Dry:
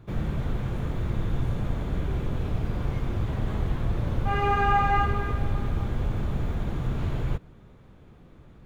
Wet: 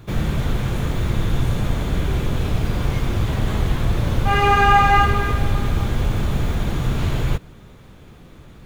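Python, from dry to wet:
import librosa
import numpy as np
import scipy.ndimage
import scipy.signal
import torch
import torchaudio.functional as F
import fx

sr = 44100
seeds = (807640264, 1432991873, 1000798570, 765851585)

y = fx.high_shelf(x, sr, hz=2600.0, db=11.5)
y = y * librosa.db_to_amplitude(7.0)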